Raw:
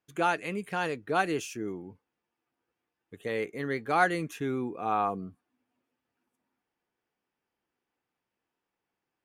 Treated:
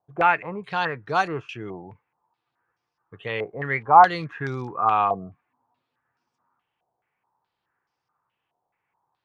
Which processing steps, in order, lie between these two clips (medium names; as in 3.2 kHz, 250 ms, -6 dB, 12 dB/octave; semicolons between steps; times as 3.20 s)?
ten-band graphic EQ 125 Hz +10 dB, 250 Hz -6 dB, 1 kHz +9 dB; 3.36–5.21 s: crackle 180 per s -44 dBFS; step-sequenced low-pass 4.7 Hz 710–5300 Hz